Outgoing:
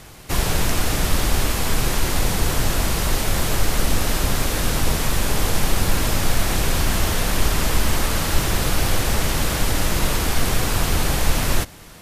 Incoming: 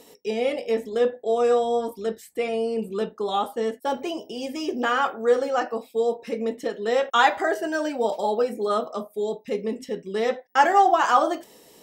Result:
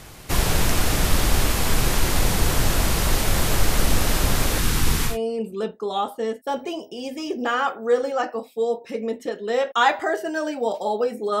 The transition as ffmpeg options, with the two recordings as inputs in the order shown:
-filter_complex "[0:a]asettb=1/sr,asplit=3[s0][s1][s2];[s0]atrim=end=4.584[s3];[s1]atrim=start=4.58:end=5.18,asetpts=PTS-STARTPTS,afade=t=in:d=0.004:c=qsin,afade=t=out:st=0.596:d=0.004:c=qsin,equalizer=f=610:t=o:w=0.5:g=-14.5[s4];[s2]atrim=start=5.176[s5];[s3][s4]acrossfade=d=0.004:c1=hsin:c2=qsin[s6];[s6][s5]acrossfade=d=0.004:c1=qsin:c2=hsin,apad=whole_dur=11.4,atrim=end=11.4,atrim=end=5.18,asetpts=PTS-STARTPTS[s7];[1:a]atrim=start=2.42:end=8.78,asetpts=PTS-STARTPTS[s8];[s7][s8]acrossfade=d=0.14:c1=tri:c2=tri"

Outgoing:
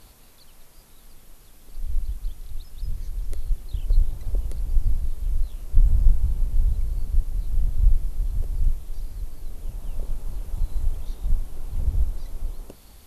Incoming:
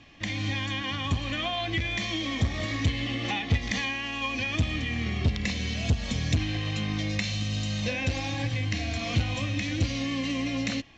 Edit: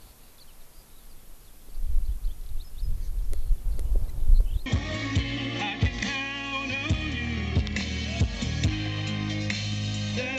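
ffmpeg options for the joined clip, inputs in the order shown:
-filter_complex "[0:a]apad=whole_dur=10.38,atrim=end=10.38,asplit=2[s0][s1];[s0]atrim=end=3.652[s2];[s1]atrim=start=3.648:end=4.662,asetpts=PTS-STARTPTS,areverse[s3];[1:a]atrim=start=2.348:end=8.07[s4];[s2][s3]acrossfade=d=0.004:c1=hsin:c2=hsin[s5];[s5][s4]acrossfade=d=0.004:c1=hsin:c2=hsin"

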